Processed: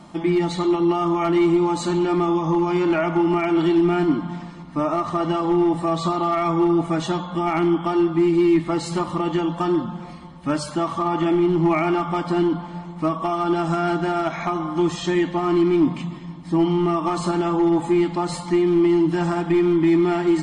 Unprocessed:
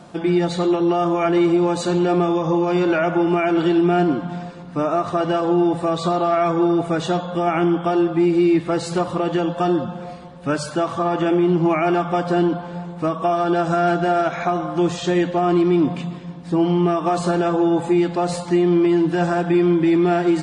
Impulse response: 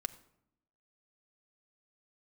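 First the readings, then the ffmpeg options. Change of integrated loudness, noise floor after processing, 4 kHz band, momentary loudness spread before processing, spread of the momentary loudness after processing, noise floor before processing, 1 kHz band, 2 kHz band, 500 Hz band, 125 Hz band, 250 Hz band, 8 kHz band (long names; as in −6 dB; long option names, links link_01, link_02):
−1.5 dB, −36 dBFS, −1.5 dB, 7 LU, 8 LU, −34 dBFS, −2.0 dB, −3.0 dB, −2.5 dB, −2.0 dB, −1.0 dB, −1.5 dB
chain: -filter_complex "[0:a]asoftclip=type=hard:threshold=-11.5dB[link_01];[1:a]atrim=start_sample=2205,atrim=end_sample=3528,asetrate=66150,aresample=44100[link_02];[link_01][link_02]afir=irnorm=-1:irlink=0,volume=3.5dB"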